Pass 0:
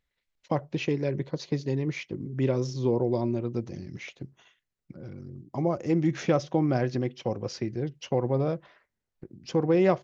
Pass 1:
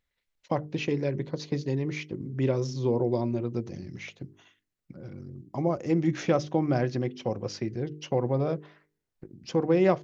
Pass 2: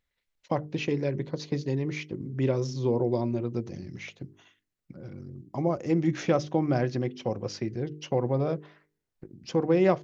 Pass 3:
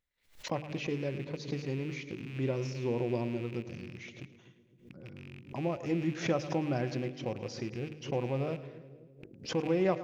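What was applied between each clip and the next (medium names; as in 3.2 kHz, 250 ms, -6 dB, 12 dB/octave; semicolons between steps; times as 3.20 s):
de-hum 50.59 Hz, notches 9
no audible change
rattle on loud lows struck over -37 dBFS, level -32 dBFS; two-band feedback delay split 500 Hz, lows 256 ms, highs 108 ms, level -14 dB; swell ahead of each attack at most 150 dB/s; trim -6.5 dB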